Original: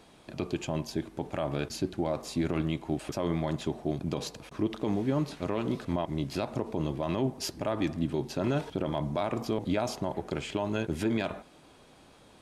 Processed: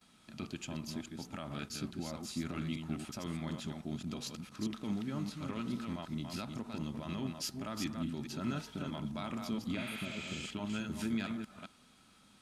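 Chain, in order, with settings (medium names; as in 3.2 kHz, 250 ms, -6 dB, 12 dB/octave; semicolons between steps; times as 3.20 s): chunks repeated in reverse 212 ms, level -5 dB; gate with hold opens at -48 dBFS; amplifier tone stack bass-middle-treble 5-5-5; small resonant body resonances 220/1300 Hz, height 13 dB, ringing for 45 ms; spectral replace 9.81–10.40 s, 690–8200 Hz both; trim +2.5 dB; SBC 192 kbps 44.1 kHz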